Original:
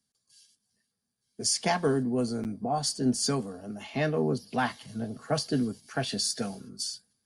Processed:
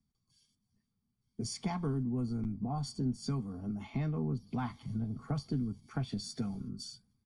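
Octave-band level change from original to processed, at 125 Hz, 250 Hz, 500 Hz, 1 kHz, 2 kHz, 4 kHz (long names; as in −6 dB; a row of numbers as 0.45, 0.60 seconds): 0.0, −5.0, −14.5, −11.5, −16.5, −14.0 decibels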